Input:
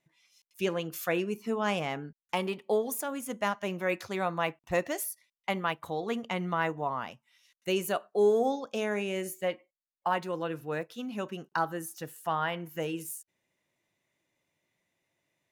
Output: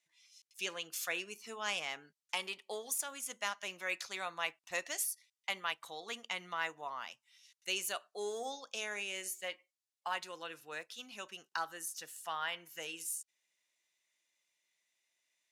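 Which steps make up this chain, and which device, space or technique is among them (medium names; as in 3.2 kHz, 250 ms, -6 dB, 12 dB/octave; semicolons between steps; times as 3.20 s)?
piezo pickup straight into a mixer (low-pass 6.7 kHz 12 dB/octave; differentiator); trim +8 dB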